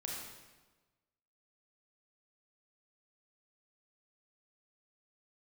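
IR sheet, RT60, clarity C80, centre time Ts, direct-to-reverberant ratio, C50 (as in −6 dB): 1.3 s, 2.5 dB, 76 ms, −3.0 dB, −0.5 dB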